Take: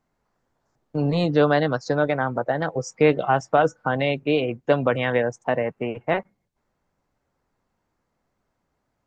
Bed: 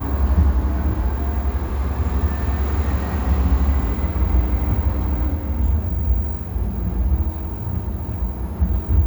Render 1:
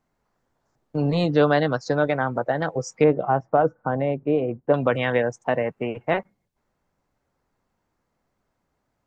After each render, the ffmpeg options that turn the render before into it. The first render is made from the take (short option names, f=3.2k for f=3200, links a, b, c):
-filter_complex "[0:a]asettb=1/sr,asplit=3[a][b][c];[a]atrim=end=3.044[d];[b]atrim=start=3.04:end=4.74,asetpts=PTS-STARTPTS,afade=t=in:d=0.004:c=qsin,afade=t=out:st=1.696:d=0.004:c=qsin,lowpass=1.1k[e];[c]atrim=start=4.736[f];[d][e]acrossfade=d=0.004:c1=hsin:c2=qsin[g];[g][f]acrossfade=d=0.004:c1=qsin:c2=hsin"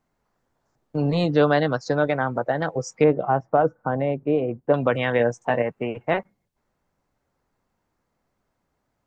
-filter_complex "[0:a]asettb=1/sr,asplit=3[a][b][c];[a]atrim=end=5.184[d];[b]atrim=start=5.18:end=5.62,asetpts=PTS-STARTPTS,afade=t=in:d=0.004:c=qsin,afade=t=out:st=0.436:d=0.004:c=qsin,asplit=2[e][f];[f]adelay=17,volume=-5.5dB[g];[e][g]amix=inputs=2:normalize=0,atrim=end_sample=19404[h];[c]atrim=start=5.616[i];[d][h]acrossfade=d=0.004:c1=hsin:c2=qsin[j];[j][i]acrossfade=d=0.004:c1=qsin:c2=hsin"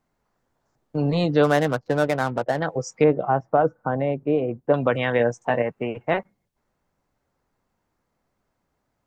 -filter_complex "[0:a]asplit=3[a][b][c];[a]afade=t=out:st=1.43:d=0.02[d];[b]adynamicsmooth=sensitivity=4.5:basefreq=520,afade=t=in:st=1.43:d=0.02,afade=t=out:st=2.59:d=0.02[e];[c]afade=t=in:st=2.59:d=0.02[f];[d][e][f]amix=inputs=3:normalize=0"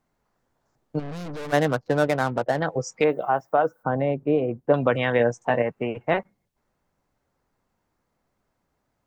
-filter_complex "[0:a]asplit=3[a][b][c];[a]afade=t=out:st=0.98:d=0.02[d];[b]aeval=exprs='(tanh(44.7*val(0)+0.45)-tanh(0.45))/44.7':c=same,afade=t=in:st=0.98:d=0.02,afade=t=out:st=1.52:d=0.02[e];[c]afade=t=in:st=1.52:d=0.02[f];[d][e][f]amix=inputs=3:normalize=0,asplit=3[g][h][i];[g]afade=t=out:st=3:d=0.02[j];[h]aemphasis=mode=production:type=riaa,afade=t=in:st=3:d=0.02,afade=t=out:st=3.82:d=0.02[k];[i]afade=t=in:st=3.82:d=0.02[l];[j][k][l]amix=inputs=3:normalize=0"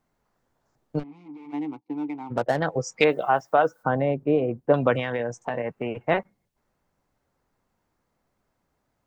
-filter_complex "[0:a]asplit=3[a][b][c];[a]afade=t=out:st=1.02:d=0.02[d];[b]asplit=3[e][f][g];[e]bandpass=f=300:t=q:w=8,volume=0dB[h];[f]bandpass=f=870:t=q:w=8,volume=-6dB[i];[g]bandpass=f=2.24k:t=q:w=8,volume=-9dB[j];[h][i][j]amix=inputs=3:normalize=0,afade=t=in:st=1.02:d=0.02,afade=t=out:st=2.3:d=0.02[k];[c]afade=t=in:st=2.3:d=0.02[l];[d][k][l]amix=inputs=3:normalize=0,asettb=1/sr,asplit=3[m][n][o];[m]atrim=end=2.984[p];[n]atrim=start=2.98:end=3.99,asetpts=PTS-STARTPTS,afade=t=in:d=0.004:c=qsin,afade=t=out:st=1.006:d=0.004:c=qsin,equalizer=f=5k:t=o:w=2.5:g=10[q];[o]atrim=start=3.986[r];[p][q]acrossfade=d=0.004:c1=hsin:c2=qsin[s];[s][r]acrossfade=d=0.004:c1=qsin:c2=hsin,asettb=1/sr,asplit=3[t][u][v];[t]atrim=end=4.994[w];[u]atrim=start=4.99:end=5.92,asetpts=PTS-STARTPTS,afade=t=in:d=0.004:c=qsin,afade=t=out:st=0.926:d=0.004:c=qsin,acompressor=threshold=-23dB:ratio=6:attack=3.2:release=140:knee=1:detection=peak[x];[v]atrim=start=5.916[y];[w][x]acrossfade=d=0.004:c1=hsin:c2=qsin[z];[z][y]acrossfade=d=0.004:c1=qsin:c2=hsin"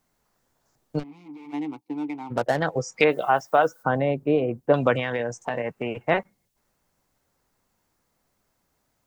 -filter_complex "[0:a]acrossover=split=3000[a][b];[b]acompressor=threshold=-45dB:ratio=4:attack=1:release=60[c];[a][c]amix=inputs=2:normalize=0,highshelf=f=3.3k:g=11"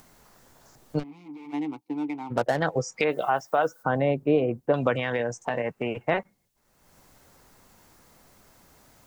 -af "acompressor=mode=upward:threshold=-42dB:ratio=2.5,alimiter=limit=-11.5dB:level=0:latency=1:release=186"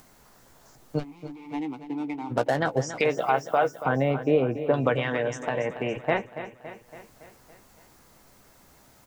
-filter_complex "[0:a]asplit=2[a][b];[b]adelay=15,volume=-11.5dB[c];[a][c]amix=inputs=2:normalize=0,aecho=1:1:281|562|843|1124|1405|1686:0.251|0.143|0.0816|0.0465|0.0265|0.0151"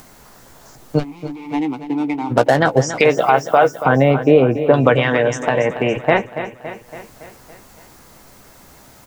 -af "volume=11dB,alimiter=limit=-1dB:level=0:latency=1"